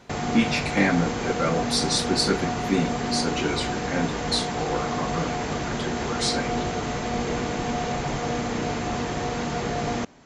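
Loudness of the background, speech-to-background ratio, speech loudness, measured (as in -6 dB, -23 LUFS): -28.0 LUFS, 1.5 dB, -26.5 LUFS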